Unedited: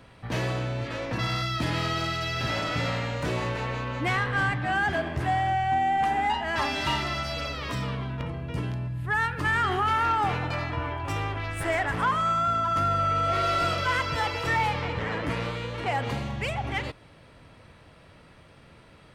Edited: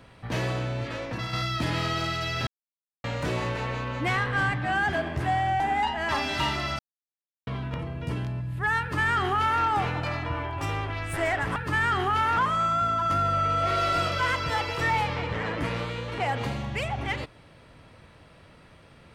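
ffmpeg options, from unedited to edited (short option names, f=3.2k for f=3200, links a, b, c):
-filter_complex "[0:a]asplit=9[a][b][c][d][e][f][g][h][i];[a]atrim=end=1.33,asetpts=PTS-STARTPTS,afade=t=out:st=0.88:d=0.45:silence=0.501187[j];[b]atrim=start=1.33:end=2.47,asetpts=PTS-STARTPTS,afade=t=in:d=0.004:c=hsin:silence=0.501187,afade=t=out:st=1.136:d=0.004:c=hsin[k];[c]atrim=start=2.47:end=3.04,asetpts=PTS-STARTPTS,volume=0[l];[d]atrim=start=3.04:end=5.602,asetpts=PTS-STARTPTS,afade=t=in:d=0.004:c=hsin[m];[e]atrim=start=6.068:end=7.26,asetpts=PTS-STARTPTS,afade=t=out:st=1.188:d=0.004:c=hsin[n];[f]atrim=start=7.26:end=7.94,asetpts=PTS-STARTPTS,volume=0[o];[g]atrim=start=7.94:end=12.032,asetpts=PTS-STARTPTS,afade=t=in:d=0.004:c=hsin[p];[h]atrim=start=9.278:end=10.092[q];[i]atrim=start=12.028[r];[j][k][l][m]concat=n=4:v=0:a=1[s];[n][o][p]concat=n=3:v=0:a=1[t];[s][t]acrossfade=d=0.004:c1=hsin:c2=hsin[u];[u][q]acrossfade=d=0.004:c1=hsin:c2=hsin[v];[v][r]acrossfade=d=0.004:c1=hsin:c2=hsin"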